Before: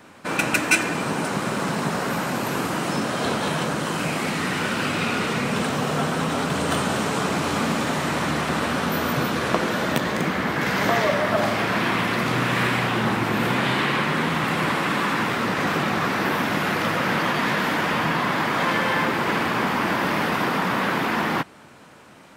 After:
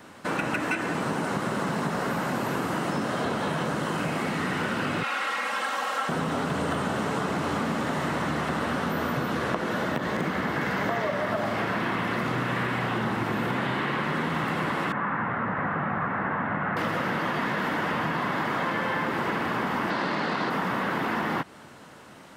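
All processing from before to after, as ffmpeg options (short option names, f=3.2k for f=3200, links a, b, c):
-filter_complex "[0:a]asettb=1/sr,asplit=3[a][b][c];[a]atrim=end=5.034[d];[b]atrim=start=5.03:end=6.09,asetpts=PTS-STARTPTS,afade=t=in:d=0.004:c=qsin,afade=t=out:st=1.056:d=0.004:c=qsin,highpass=900,aecho=1:1:3.7:0.94,atrim=end_sample=46746[e];[c]atrim=start=6.086[f];[d][e]acrossfade=d=0.004:c1=hsin:c2=qsin[g];[g][f]acrossfade=d=0.004:c1=qsin:c2=hsin,asettb=1/sr,asplit=3[h][i][j];[h]atrim=end=14.924[k];[i]atrim=start=14.92:end=16.77,asetpts=PTS-STARTPTS,afade=t=in:d=0.004:c=qsin,afade=t=out:st=1.846:d=0.004:c=qsin,lowpass=f=1.8k:w=0.5412,lowpass=f=1.8k:w=1.3066,equalizer=f=360:w=1.3:g=-8.5[l];[j]atrim=start=16.766[m];[k][l]acrossfade=d=0.004:c1=hsin:c2=qsin[n];[n][m]acrossfade=d=0.004:c1=qsin:c2=hsin,asettb=1/sr,asplit=3[o][p][q];[o]atrim=end=19.904[r];[p]atrim=start=19.9:end=20.5,asetpts=PTS-STARTPTS,afade=t=in:d=0.004:c=qsin,afade=t=out:st=0.596:d=0.004:c=qsin,acrusher=bits=3:mode=log:mix=0:aa=0.000001,highpass=130,lowpass=6.9k,equalizer=f=4.3k:w=2.4:g=11.5[s];[q]atrim=start=20.496[t];[r][s]acrossfade=d=0.004:c1=hsin:c2=qsin[u];[u][t]acrossfade=d=0.004:c1=qsin:c2=hsin,acrossover=split=2600[v][w];[w]acompressor=threshold=-39dB:ratio=4:attack=1:release=60[x];[v][x]amix=inputs=2:normalize=0,bandreject=f=2.4k:w=15,acompressor=threshold=-24dB:ratio=6"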